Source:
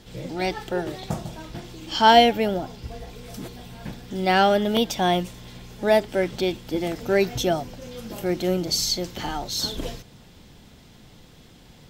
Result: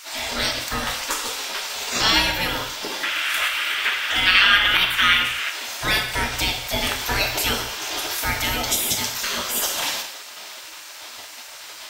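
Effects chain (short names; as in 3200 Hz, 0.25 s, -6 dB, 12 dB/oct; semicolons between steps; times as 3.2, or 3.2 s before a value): spectral gate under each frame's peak -20 dB weak; 3.03–5.5 band shelf 2000 Hz +14 dB; compressor 2:1, threshold -43 dBFS, peak gain reduction 13.5 dB; non-linear reverb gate 0.26 s falling, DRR 2.5 dB; maximiser +19.5 dB; gain -1 dB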